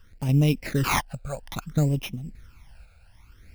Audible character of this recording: aliases and images of a low sample rate 7800 Hz, jitter 0%; random-step tremolo; a quantiser's noise floor 12-bit, dither none; phasing stages 12, 0.6 Hz, lowest notch 320–1500 Hz

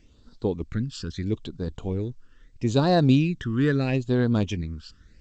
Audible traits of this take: phasing stages 12, 0.77 Hz, lowest notch 680–2300 Hz; G.722

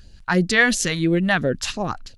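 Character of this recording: phasing stages 2, 2.9 Hz, lowest notch 350–1200 Hz

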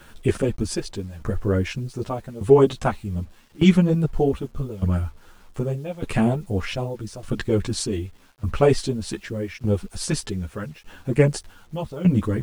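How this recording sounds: tremolo saw down 0.83 Hz, depth 90%; a quantiser's noise floor 10-bit, dither none; a shimmering, thickened sound

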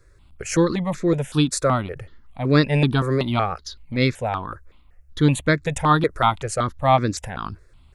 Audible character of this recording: notches that jump at a steady rate 5.3 Hz 820–3000 Hz

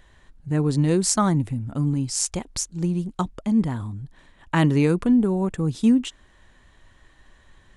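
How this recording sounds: noise floor -56 dBFS; spectral tilt -5.5 dB/oct

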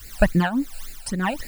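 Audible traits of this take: a quantiser's noise floor 8-bit, dither triangular; tremolo triangle 1.5 Hz, depth 85%; phasing stages 12, 3.6 Hz, lowest notch 330–1100 Hz

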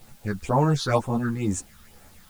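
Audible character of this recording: phasing stages 6, 2.1 Hz, lowest notch 570–4500 Hz; a quantiser's noise floor 10-bit, dither triangular; a shimmering, thickened sound

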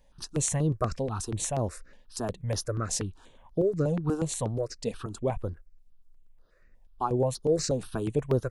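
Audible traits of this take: notches that jump at a steady rate 8.3 Hz 350–7900 Hz

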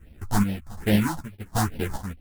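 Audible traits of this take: aliases and images of a low sample rate 1200 Hz, jitter 20%; phasing stages 4, 2.4 Hz, lowest notch 380–1200 Hz; chopped level 1.3 Hz, depth 65%, duty 55%; a shimmering, thickened sound

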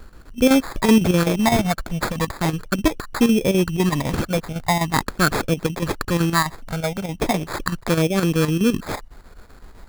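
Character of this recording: phasing stages 12, 0.4 Hz, lowest notch 350–1000 Hz; chopped level 7.9 Hz, depth 60%, duty 75%; aliases and images of a low sample rate 2900 Hz, jitter 0%

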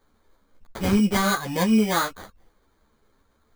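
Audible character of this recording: aliases and images of a low sample rate 2700 Hz, jitter 0%; a shimmering, thickened sound

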